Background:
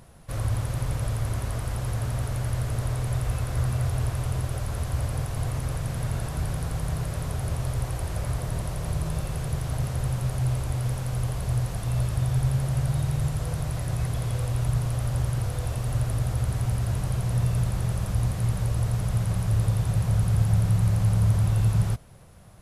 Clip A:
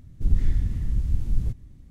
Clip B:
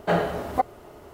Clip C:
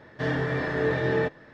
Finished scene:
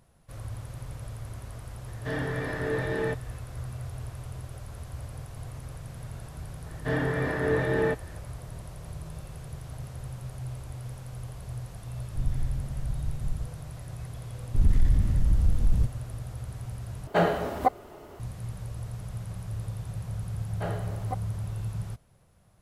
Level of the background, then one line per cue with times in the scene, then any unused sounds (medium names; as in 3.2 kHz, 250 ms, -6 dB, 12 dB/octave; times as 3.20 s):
background -11.5 dB
1.86 s: add C -4.5 dB
6.66 s: add C -0.5 dB + low-pass 2.9 kHz 6 dB/octave
11.94 s: add A -8.5 dB
14.34 s: add A -4.5 dB + waveshaping leveller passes 2
17.07 s: replace with B -0.5 dB
20.53 s: add B -12.5 dB